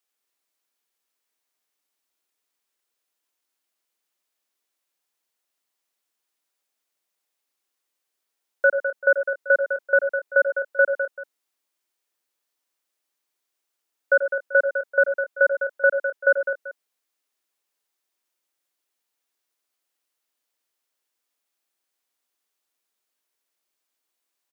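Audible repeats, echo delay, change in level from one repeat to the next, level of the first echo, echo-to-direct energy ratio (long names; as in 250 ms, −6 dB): 3, 87 ms, repeats not evenly spaced, −12.0 dB, −4.5 dB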